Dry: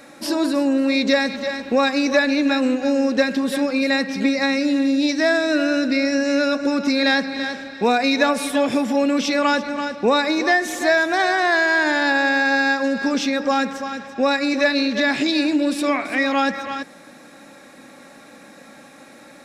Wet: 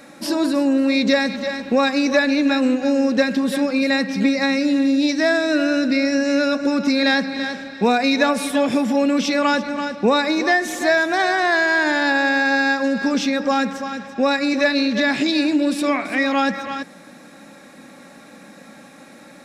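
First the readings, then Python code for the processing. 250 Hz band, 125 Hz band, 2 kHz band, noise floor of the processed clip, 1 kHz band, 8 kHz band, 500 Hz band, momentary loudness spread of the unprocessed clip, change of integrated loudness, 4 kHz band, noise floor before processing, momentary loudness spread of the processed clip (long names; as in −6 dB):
+1.5 dB, can't be measured, 0.0 dB, −44 dBFS, 0.0 dB, 0.0 dB, 0.0 dB, 5 LU, +0.5 dB, 0.0 dB, −45 dBFS, 5 LU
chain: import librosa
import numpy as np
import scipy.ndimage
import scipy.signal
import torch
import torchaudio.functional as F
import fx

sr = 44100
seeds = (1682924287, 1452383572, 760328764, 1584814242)

y = fx.peak_eq(x, sr, hz=190.0, db=6.5, octaves=0.55)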